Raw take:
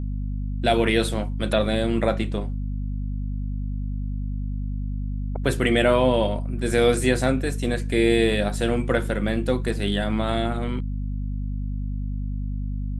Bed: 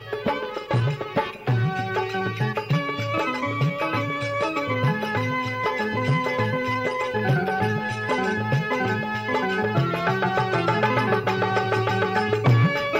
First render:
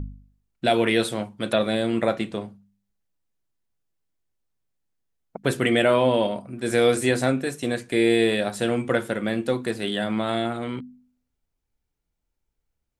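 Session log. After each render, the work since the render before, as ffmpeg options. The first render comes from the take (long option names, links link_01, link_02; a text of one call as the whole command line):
ffmpeg -i in.wav -af "bandreject=frequency=50:width_type=h:width=4,bandreject=frequency=100:width_type=h:width=4,bandreject=frequency=150:width_type=h:width=4,bandreject=frequency=200:width_type=h:width=4,bandreject=frequency=250:width_type=h:width=4" out.wav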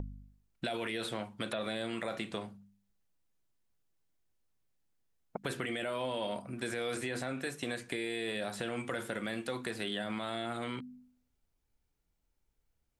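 ffmpeg -i in.wav -filter_complex "[0:a]alimiter=limit=-16.5dB:level=0:latency=1:release=41,acrossover=split=780|4000[link_01][link_02][link_03];[link_01]acompressor=threshold=-39dB:ratio=4[link_04];[link_02]acompressor=threshold=-39dB:ratio=4[link_05];[link_03]acompressor=threshold=-50dB:ratio=4[link_06];[link_04][link_05][link_06]amix=inputs=3:normalize=0" out.wav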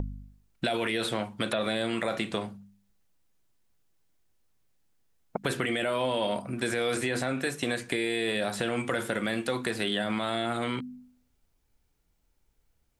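ffmpeg -i in.wav -af "volume=7.5dB" out.wav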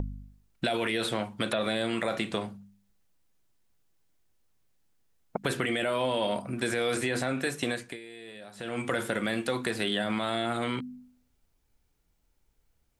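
ffmpeg -i in.wav -filter_complex "[0:a]asplit=3[link_01][link_02][link_03];[link_01]atrim=end=8,asetpts=PTS-STARTPTS,afade=type=out:start_time=7.66:duration=0.34:silence=0.149624[link_04];[link_02]atrim=start=8:end=8.54,asetpts=PTS-STARTPTS,volume=-16.5dB[link_05];[link_03]atrim=start=8.54,asetpts=PTS-STARTPTS,afade=type=in:duration=0.34:silence=0.149624[link_06];[link_04][link_05][link_06]concat=n=3:v=0:a=1" out.wav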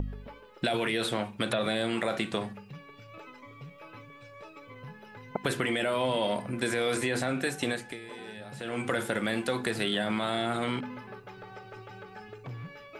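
ffmpeg -i in.wav -i bed.wav -filter_complex "[1:a]volume=-23.5dB[link_01];[0:a][link_01]amix=inputs=2:normalize=0" out.wav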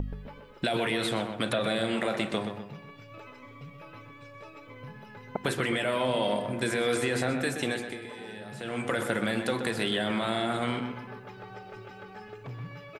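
ffmpeg -i in.wav -filter_complex "[0:a]asplit=2[link_01][link_02];[link_02]adelay=126,lowpass=frequency=3000:poles=1,volume=-7dB,asplit=2[link_03][link_04];[link_04]adelay=126,lowpass=frequency=3000:poles=1,volume=0.44,asplit=2[link_05][link_06];[link_06]adelay=126,lowpass=frequency=3000:poles=1,volume=0.44,asplit=2[link_07][link_08];[link_08]adelay=126,lowpass=frequency=3000:poles=1,volume=0.44,asplit=2[link_09][link_10];[link_10]adelay=126,lowpass=frequency=3000:poles=1,volume=0.44[link_11];[link_01][link_03][link_05][link_07][link_09][link_11]amix=inputs=6:normalize=0" out.wav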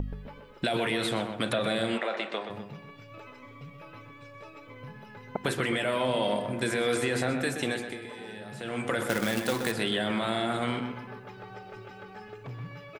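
ffmpeg -i in.wav -filter_complex "[0:a]asplit=3[link_01][link_02][link_03];[link_01]afade=type=out:start_time=1.97:duration=0.02[link_04];[link_02]highpass=440,lowpass=4200,afade=type=in:start_time=1.97:duration=0.02,afade=type=out:start_time=2.49:duration=0.02[link_05];[link_03]afade=type=in:start_time=2.49:duration=0.02[link_06];[link_04][link_05][link_06]amix=inputs=3:normalize=0,asettb=1/sr,asplit=3[link_07][link_08][link_09];[link_07]atrim=end=9.094[link_10];[link_08]atrim=start=9.09:end=9.72,asetpts=PTS-STARTPTS,afade=type=in:duration=0.004:curve=qsin,afade=type=out:start_time=0.626:duration=0.004:curve=qsin,acrusher=bits=2:mode=log:mix=0:aa=0.000001[link_11];[link_09]atrim=start=9.716[link_12];[link_10][link_11]acrossfade=duration=0.004:curve1=hsin:curve2=qsin[link_13];[link_13][link_12]acrossfade=duration=0.004:curve1=qsin:curve2=hsin" out.wav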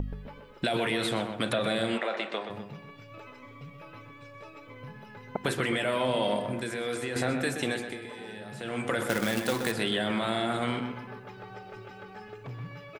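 ffmpeg -i in.wav -filter_complex "[0:a]asplit=3[link_01][link_02][link_03];[link_01]atrim=end=6.612[link_04];[link_02]atrim=start=6.608:end=7.162,asetpts=PTS-STARTPTS,volume=-5.5dB[link_05];[link_03]atrim=start=7.158[link_06];[link_04][link_05]acrossfade=duration=0.004:curve1=hsin:curve2=hsin[link_07];[link_07][link_06]acrossfade=duration=0.004:curve1=hsin:curve2=hsin" out.wav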